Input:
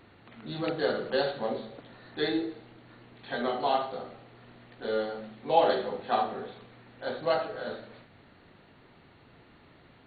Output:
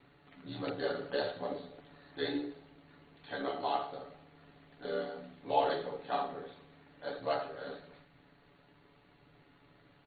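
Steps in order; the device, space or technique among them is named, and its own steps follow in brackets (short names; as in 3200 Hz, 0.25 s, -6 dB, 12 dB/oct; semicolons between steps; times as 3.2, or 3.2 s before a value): ring-modulated robot voice (ring modulator 36 Hz; comb 7 ms); gain -5 dB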